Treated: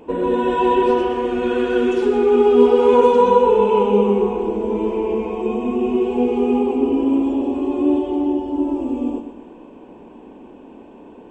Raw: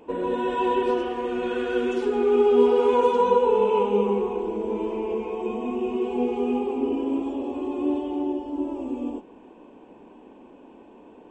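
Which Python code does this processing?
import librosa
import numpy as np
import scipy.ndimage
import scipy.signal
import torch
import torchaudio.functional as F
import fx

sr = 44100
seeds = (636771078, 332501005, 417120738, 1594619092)

y = fx.low_shelf(x, sr, hz=280.0, db=5.5)
y = fx.echo_feedback(y, sr, ms=125, feedback_pct=46, wet_db=-10)
y = y * 10.0 ** (4.5 / 20.0)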